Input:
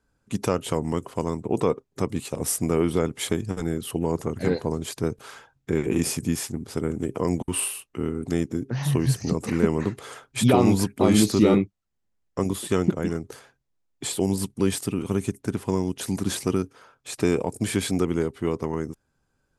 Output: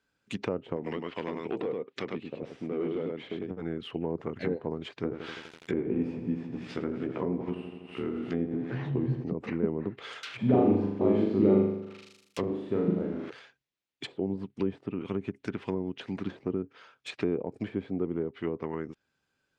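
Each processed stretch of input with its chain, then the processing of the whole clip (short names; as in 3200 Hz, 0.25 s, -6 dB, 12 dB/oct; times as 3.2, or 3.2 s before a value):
0.76–3.51 weighting filter D + echo 0.101 s -4 dB + overloaded stage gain 19 dB
5.03–9.24 doubler 16 ms -5 dB + lo-fi delay 83 ms, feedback 80%, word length 7-bit, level -8.5 dB
10.23–13.3 switching spikes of -19.5 dBFS + high shelf 5800 Hz -4 dB + flutter echo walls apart 6.8 m, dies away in 0.81 s
whole clip: weighting filter D; treble ducked by the level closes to 630 Hz, closed at -20.5 dBFS; tone controls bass 0 dB, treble -7 dB; gain -5.5 dB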